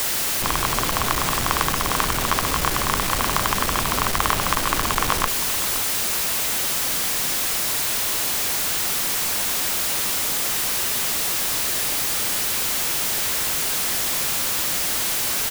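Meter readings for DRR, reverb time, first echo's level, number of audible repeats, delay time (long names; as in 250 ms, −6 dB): no reverb audible, no reverb audible, −14.0 dB, 1, 518 ms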